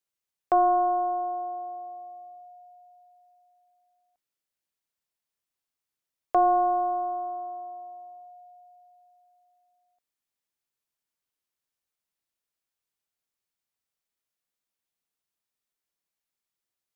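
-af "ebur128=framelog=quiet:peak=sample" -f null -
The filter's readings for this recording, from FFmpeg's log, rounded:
Integrated loudness:
  I:         -26.2 LUFS
  Threshold: -39.6 LUFS
Loudness range:
  LRA:        18.3 LU
  Threshold: -52.5 LUFS
  LRA low:   -47.1 LUFS
  LRA high:  -28.9 LUFS
Sample peak:
  Peak:      -15.2 dBFS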